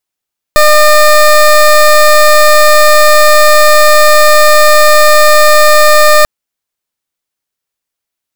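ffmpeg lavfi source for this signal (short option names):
-f lavfi -i "aevalsrc='0.631*(2*lt(mod(605*t,1),0.2)-1)':d=5.69:s=44100"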